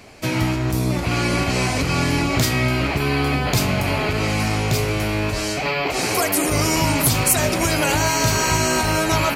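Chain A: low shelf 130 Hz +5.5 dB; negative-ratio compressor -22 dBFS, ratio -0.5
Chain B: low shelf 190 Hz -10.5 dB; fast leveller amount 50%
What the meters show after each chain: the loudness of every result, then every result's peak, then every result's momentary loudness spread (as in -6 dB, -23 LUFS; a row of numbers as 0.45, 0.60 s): -23.0, -17.0 LUFS; -6.0, -4.0 dBFS; 7, 3 LU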